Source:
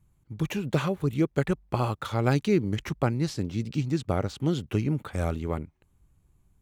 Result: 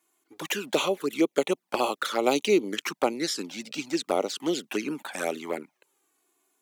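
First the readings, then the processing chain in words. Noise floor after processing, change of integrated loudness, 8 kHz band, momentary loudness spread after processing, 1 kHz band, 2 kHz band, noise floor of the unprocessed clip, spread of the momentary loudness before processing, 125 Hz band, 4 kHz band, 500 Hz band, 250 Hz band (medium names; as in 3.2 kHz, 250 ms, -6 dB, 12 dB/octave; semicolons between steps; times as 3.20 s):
-79 dBFS, 0.0 dB, +10.0 dB, 9 LU, +3.0 dB, +4.5 dB, -67 dBFS, 6 LU, -20.0 dB, +8.5 dB, +3.5 dB, -2.0 dB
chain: Bessel high-pass 430 Hz, order 6; treble shelf 2.9 kHz +5.5 dB; touch-sensitive flanger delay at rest 2.8 ms, full sweep at -27.5 dBFS; trim +8 dB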